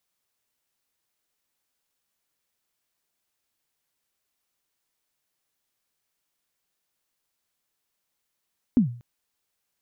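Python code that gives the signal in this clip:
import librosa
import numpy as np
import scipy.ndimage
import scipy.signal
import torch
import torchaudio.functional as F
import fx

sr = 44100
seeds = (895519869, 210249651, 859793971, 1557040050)

y = fx.drum_kick(sr, seeds[0], length_s=0.24, level_db=-11.5, start_hz=270.0, end_hz=120.0, sweep_ms=114.0, decay_s=0.43, click=False)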